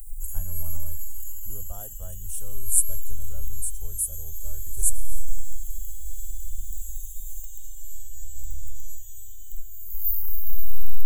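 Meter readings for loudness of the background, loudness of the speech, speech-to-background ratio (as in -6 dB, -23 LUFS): -36.0 LUFS, -30.0 LUFS, 6.0 dB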